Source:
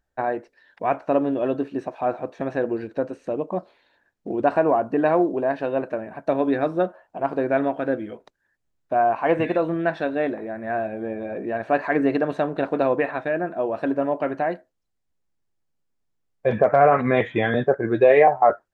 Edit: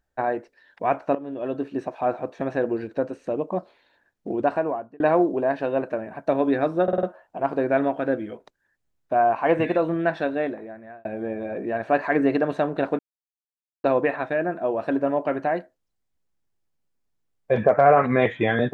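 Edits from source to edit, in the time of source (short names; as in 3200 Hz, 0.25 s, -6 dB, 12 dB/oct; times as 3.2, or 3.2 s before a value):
1.15–1.8 fade in, from -17.5 dB
4.31–5 fade out
6.83 stutter 0.05 s, 5 plays
10.06–10.85 fade out
12.79 insert silence 0.85 s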